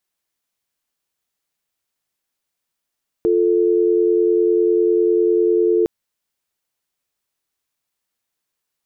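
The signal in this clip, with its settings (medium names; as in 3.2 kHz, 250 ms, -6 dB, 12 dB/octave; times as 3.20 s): call progress tone dial tone, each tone -15.5 dBFS 2.61 s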